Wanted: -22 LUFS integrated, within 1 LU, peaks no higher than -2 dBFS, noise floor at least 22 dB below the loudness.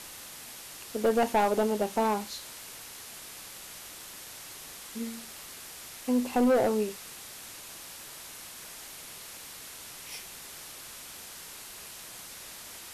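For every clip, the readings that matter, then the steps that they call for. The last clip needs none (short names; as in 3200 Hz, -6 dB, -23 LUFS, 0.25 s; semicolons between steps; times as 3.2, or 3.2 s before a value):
clipped 0.9%; flat tops at -19.5 dBFS; noise floor -45 dBFS; noise floor target -56 dBFS; loudness -33.5 LUFS; peak -19.5 dBFS; loudness target -22.0 LUFS
-> clip repair -19.5 dBFS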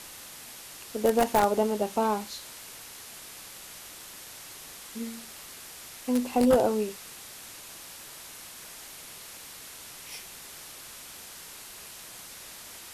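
clipped 0.0%; noise floor -45 dBFS; noise floor target -55 dBFS
-> noise print and reduce 10 dB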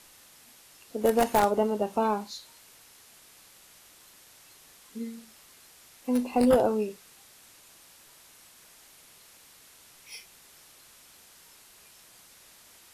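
noise floor -55 dBFS; loudness -27.0 LUFS; peak -10.0 dBFS; loudness target -22.0 LUFS
-> gain +5 dB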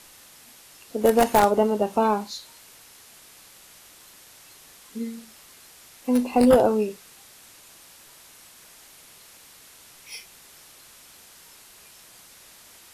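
loudness -22.0 LUFS; peak -5.0 dBFS; noise floor -50 dBFS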